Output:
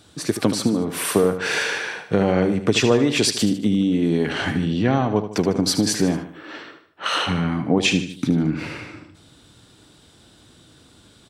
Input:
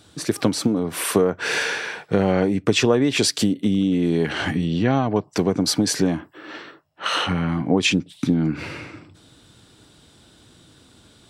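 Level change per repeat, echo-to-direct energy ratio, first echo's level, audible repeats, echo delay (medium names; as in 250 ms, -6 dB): -6.5 dB, -9.5 dB, -10.5 dB, 3, 76 ms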